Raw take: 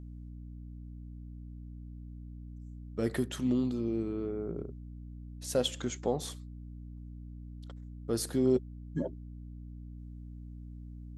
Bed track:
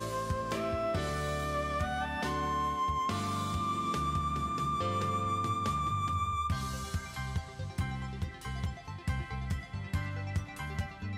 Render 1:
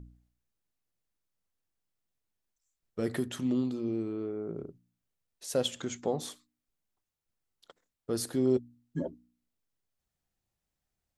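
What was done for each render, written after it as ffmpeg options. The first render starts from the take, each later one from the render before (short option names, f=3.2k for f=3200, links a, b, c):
-af "bandreject=f=60:t=h:w=4,bandreject=f=120:t=h:w=4,bandreject=f=180:t=h:w=4,bandreject=f=240:t=h:w=4,bandreject=f=300:t=h:w=4"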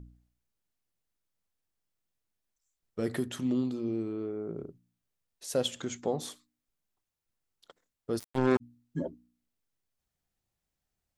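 -filter_complex "[0:a]asplit=3[a][b][c];[a]afade=t=out:st=8.18:d=0.02[d];[b]acrusher=bits=3:mix=0:aa=0.5,afade=t=in:st=8.18:d=0.02,afade=t=out:st=8.6:d=0.02[e];[c]afade=t=in:st=8.6:d=0.02[f];[d][e][f]amix=inputs=3:normalize=0"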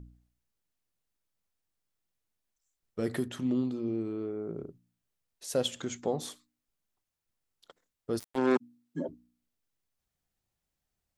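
-filter_complex "[0:a]asettb=1/sr,asplit=3[a][b][c];[a]atrim=end=3.284[d];[b]atrim=start=3.28:end=4.05,asetpts=PTS-STARTPTS,afade=t=in:d=0.004:c=qsin,afade=t=out:st=0.766:d=0.004:c=qsin,highshelf=f=4.4k:g=-7[e];[c]atrim=start=4.046[f];[d][e]acrossfade=d=0.004:c1=hsin:c2=qsin[g];[g][f]acrossfade=d=0.004:c1=qsin:c2=hsin,asettb=1/sr,asplit=3[h][i][j];[h]atrim=end=8.354[k];[i]atrim=start=8.35:end=9.09,asetpts=PTS-STARTPTS,afade=t=in:d=0.004:c=qsin,afade=t=out:st=0.736:d=0.004:c=qsin,highpass=f=180:w=0.5412,highpass=f=180:w=1.3066[l];[j]atrim=start=9.086[m];[k][l]acrossfade=d=0.004:c1=hsin:c2=qsin[n];[n][m]acrossfade=d=0.004:c1=qsin:c2=hsin"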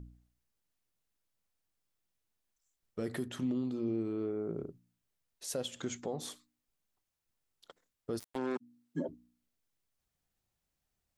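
-af "alimiter=level_in=2dB:limit=-24dB:level=0:latency=1:release=247,volume=-2dB"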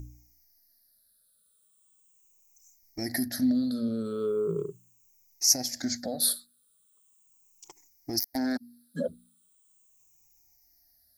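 -af "afftfilt=real='re*pow(10,23/40*sin(2*PI*(0.71*log(max(b,1)*sr/1024/100)/log(2)-(-0.39)*(pts-256)/sr)))':imag='im*pow(10,23/40*sin(2*PI*(0.71*log(max(b,1)*sr/1024/100)/log(2)-(-0.39)*(pts-256)/sr)))':win_size=1024:overlap=0.75,aexciter=amount=5.8:drive=4.5:freq=4.2k"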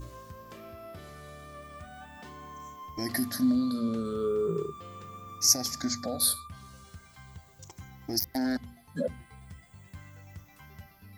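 -filter_complex "[1:a]volume=-13dB[a];[0:a][a]amix=inputs=2:normalize=0"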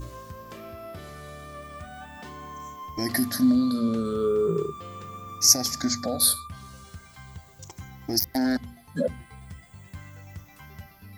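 -af "volume=5dB"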